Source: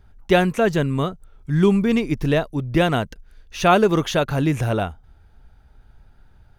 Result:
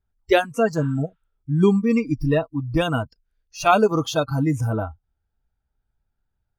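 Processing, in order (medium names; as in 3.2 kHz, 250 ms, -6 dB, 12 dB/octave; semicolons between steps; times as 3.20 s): spectral replace 0.83–1.30 s, 800–5400 Hz both; spectral noise reduction 25 dB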